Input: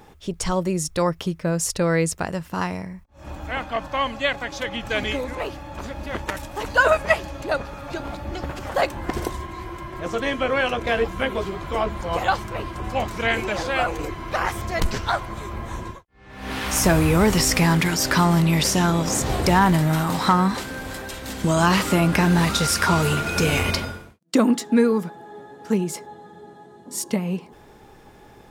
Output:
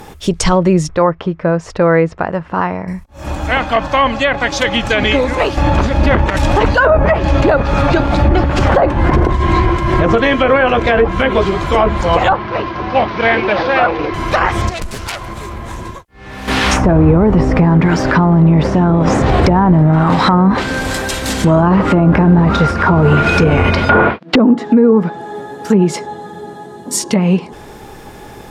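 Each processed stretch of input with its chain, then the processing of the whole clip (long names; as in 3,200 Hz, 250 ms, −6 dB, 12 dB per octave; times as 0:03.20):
0:00.89–0:02.88: low-pass filter 1,400 Hz + low-shelf EQ 350 Hz −9 dB + upward compression, threshold −39 dBFS
0:05.57–0:10.17: low-shelf EQ 270 Hz +5.5 dB + shaped tremolo triangle 2.3 Hz, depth 85% + envelope flattener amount 50%
0:12.33–0:14.14: variable-slope delta modulation 32 kbit/s + high-pass filter 240 Hz 6 dB per octave + high-frequency loss of the air 270 metres
0:14.69–0:16.48: phase distortion by the signal itself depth 0.37 ms + downward compressor 2.5 to 1, threshold −40 dBFS
0:23.89–0:24.36: mid-hump overdrive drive 36 dB, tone 6,800 Hz, clips at −6.5 dBFS + high-frequency loss of the air 380 metres
whole clip: high-shelf EQ 7,800 Hz +6 dB; treble cut that deepens with the level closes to 830 Hz, closed at −14.5 dBFS; boost into a limiter +15 dB; level −1 dB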